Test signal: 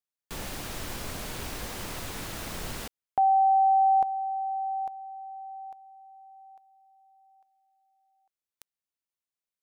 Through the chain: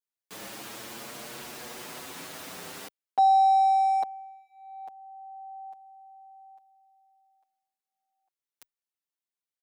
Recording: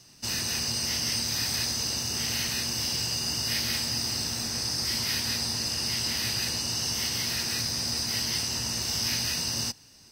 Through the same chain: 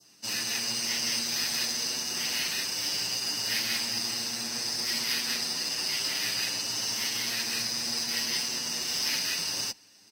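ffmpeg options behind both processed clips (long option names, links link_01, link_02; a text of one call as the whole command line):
ffmpeg -i in.wav -filter_complex "[0:a]highpass=220,asplit=2[link_01][link_02];[link_02]acrusher=bits=3:mix=0:aa=0.5,volume=-10.5dB[link_03];[link_01][link_03]amix=inputs=2:normalize=0,adynamicequalizer=threshold=0.0112:dfrequency=2300:dqfactor=1.1:tfrequency=2300:tqfactor=1.1:attack=5:release=100:ratio=0.375:range=2:mode=boostabove:tftype=bell,asplit=2[link_04][link_05];[link_05]adelay=7.1,afreqshift=0.3[link_06];[link_04][link_06]amix=inputs=2:normalize=1" out.wav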